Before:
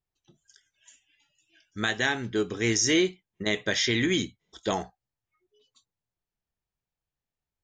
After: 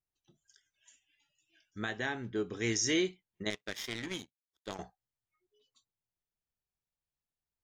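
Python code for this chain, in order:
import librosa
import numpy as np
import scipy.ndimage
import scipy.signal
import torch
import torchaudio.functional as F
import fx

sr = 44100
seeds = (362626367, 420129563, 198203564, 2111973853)

y = fx.high_shelf(x, sr, hz=2900.0, db=-11.0, at=(1.78, 2.53))
y = fx.power_curve(y, sr, exponent=2.0, at=(3.5, 4.79))
y = F.gain(torch.from_numpy(y), -7.0).numpy()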